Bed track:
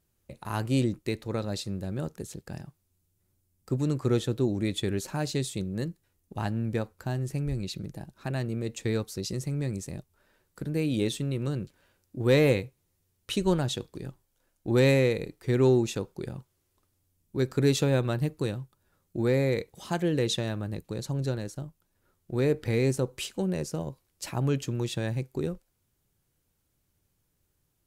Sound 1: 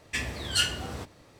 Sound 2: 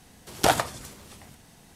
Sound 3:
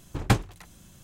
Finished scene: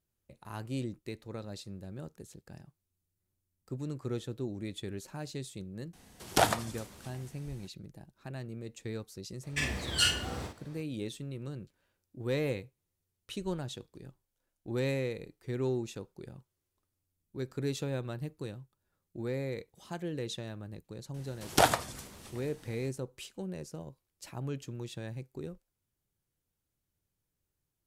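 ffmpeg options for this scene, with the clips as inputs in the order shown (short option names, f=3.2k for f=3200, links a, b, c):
-filter_complex "[2:a]asplit=2[a][b];[0:a]volume=-10.5dB[c];[1:a]asplit=2[d][e];[e]adelay=47,volume=-4.5dB[f];[d][f]amix=inputs=2:normalize=0[g];[a]atrim=end=1.75,asetpts=PTS-STARTPTS,volume=-4.5dB,afade=t=in:d=0.004:c=hsin,afade=t=out:st=1.746:d=0.004:c=hsin,adelay=261513S[h];[g]atrim=end=1.39,asetpts=PTS-STARTPTS,volume=-2.5dB,afade=t=in:d=0.004:c=hsin,afade=t=out:st=1.386:d=0.004:c=hsin,adelay=9430[i];[b]atrim=end=1.75,asetpts=PTS-STARTPTS,volume=-3dB,afade=t=in:d=0.004:c=hsin,afade=t=out:st=1.746:d=0.004:c=hsin,adelay=21140[j];[c][h][i][j]amix=inputs=4:normalize=0"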